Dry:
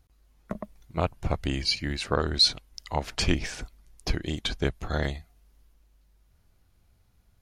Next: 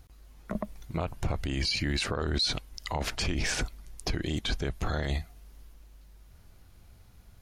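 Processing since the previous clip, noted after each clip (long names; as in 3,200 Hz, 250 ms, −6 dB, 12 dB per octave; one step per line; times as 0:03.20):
in parallel at −0.5 dB: compressor whose output falls as the input rises −33 dBFS, ratio −0.5
on the sum: brickwall limiter −20 dBFS, peak gain reduction 11 dB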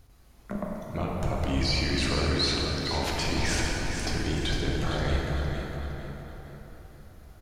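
on a send: repeating echo 458 ms, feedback 36%, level −7.5 dB
on the sum: dense smooth reverb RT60 4.2 s, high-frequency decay 0.45×, DRR −3 dB
level −1.5 dB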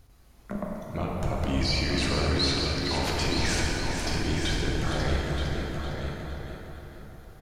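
single-tap delay 927 ms −7.5 dB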